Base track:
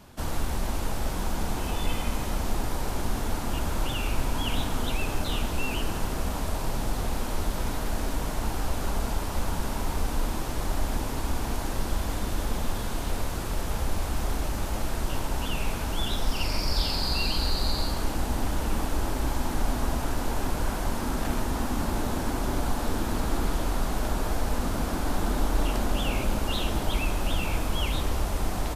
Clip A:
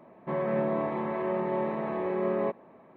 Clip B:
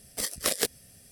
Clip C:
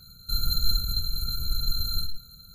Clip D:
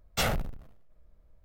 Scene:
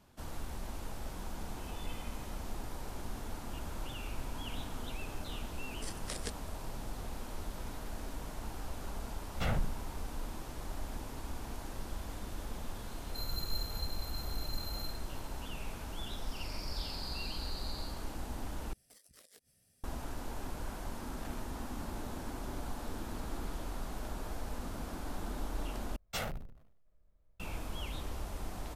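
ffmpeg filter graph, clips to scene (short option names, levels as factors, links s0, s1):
-filter_complex "[2:a]asplit=2[s0][s1];[4:a]asplit=2[s2][s3];[0:a]volume=0.224[s4];[s0]aresample=22050,aresample=44100[s5];[s2]bass=f=250:g=7,treble=f=4000:g=-13[s6];[s1]acompressor=threshold=0.01:ratio=6:attack=3.2:release=140:knee=1:detection=peak[s7];[s3]bandreject=f=60:t=h:w=6,bandreject=f=120:t=h:w=6,bandreject=f=180:t=h:w=6,bandreject=f=240:t=h:w=6,bandreject=f=300:t=h:w=6,bandreject=f=360:t=h:w=6,bandreject=f=420:t=h:w=6,bandreject=f=480:t=h:w=6,bandreject=f=540:t=h:w=6[s8];[s4]asplit=3[s9][s10][s11];[s9]atrim=end=18.734[s12];[s7]atrim=end=1.11,asetpts=PTS-STARTPTS,volume=0.141[s13];[s10]atrim=start=19.836:end=25.964[s14];[s8]atrim=end=1.44,asetpts=PTS-STARTPTS,volume=0.335[s15];[s11]atrim=start=27.396[s16];[s5]atrim=end=1.11,asetpts=PTS-STARTPTS,volume=0.188,afade=t=in:d=0.004:c=hsin,afade=t=out:st=1.106:d=0.004:c=hsin,adelay=5640[s17];[s6]atrim=end=1.44,asetpts=PTS-STARTPTS,volume=0.398,afade=t=in:d=0.004:c=hsin,afade=t=out:st=1.436:d=0.004:c=hsin,adelay=9230[s18];[3:a]atrim=end=2.54,asetpts=PTS-STARTPTS,volume=0.211,afade=t=in:d=0.004:c=hsin,afade=t=out:st=2.536:d=0.004:c=hsin,adelay=12860[s19];[s12][s13]acrossfade=d=0.004:c1=hsin:c2=hsin[s20];[s20][s14]acrossfade=d=0.004:c1=hsin:c2=hsin[s21];[s21][s15]acrossfade=d=0.004:c1=hsin:c2=hsin[s22];[s22][s16]acrossfade=d=0.004:c1=hsin:c2=hsin[s23];[s23][s17][s18][s19]amix=inputs=4:normalize=0"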